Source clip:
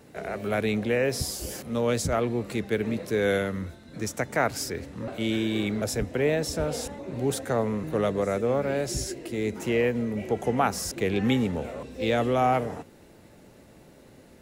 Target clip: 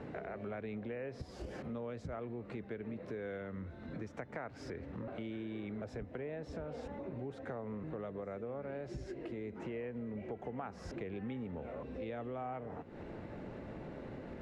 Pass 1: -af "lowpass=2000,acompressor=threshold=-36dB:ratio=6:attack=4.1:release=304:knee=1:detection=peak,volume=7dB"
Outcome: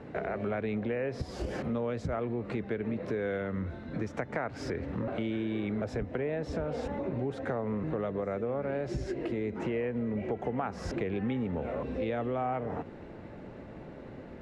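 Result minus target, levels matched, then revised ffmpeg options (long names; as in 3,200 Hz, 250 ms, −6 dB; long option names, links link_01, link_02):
downward compressor: peak gain reduction −9.5 dB
-af "lowpass=2000,acompressor=threshold=-47.5dB:ratio=6:attack=4.1:release=304:knee=1:detection=peak,volume=7dB"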